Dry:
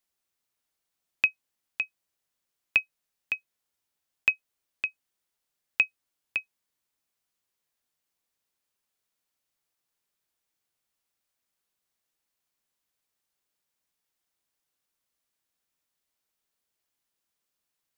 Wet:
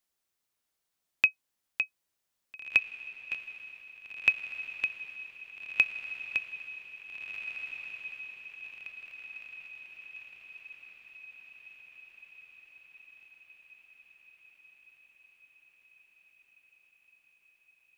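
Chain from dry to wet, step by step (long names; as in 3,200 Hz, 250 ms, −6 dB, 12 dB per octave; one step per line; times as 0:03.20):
feedback delay with all-pass diffusion 1,763 ms, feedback 58%, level −8 dB
0:02.79–0:03.35: micro pitch shift up and down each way 38 cents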